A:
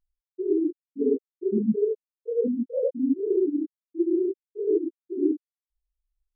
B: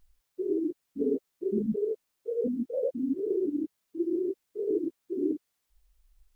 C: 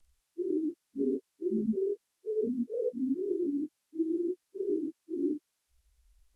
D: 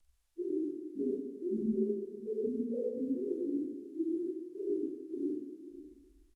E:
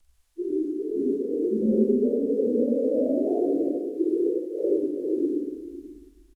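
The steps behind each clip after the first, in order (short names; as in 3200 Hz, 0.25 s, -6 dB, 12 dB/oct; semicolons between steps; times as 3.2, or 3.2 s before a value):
spectral compressor 2:1; gain -5.5 dB
inharmonic rescaling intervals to 87%
tapped delay 0.398/0.543 s -18.5/-15 dB; on a send at -3 dB: reverb RT60 1.1 s, pre-delay 23 ms; on the sum: gain -4 dB
on a send: echo 0.107 s -5.5 dB; on the sum: echoes that change speed 0.446 s, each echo +2 st, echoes 3; gain +7.5 dB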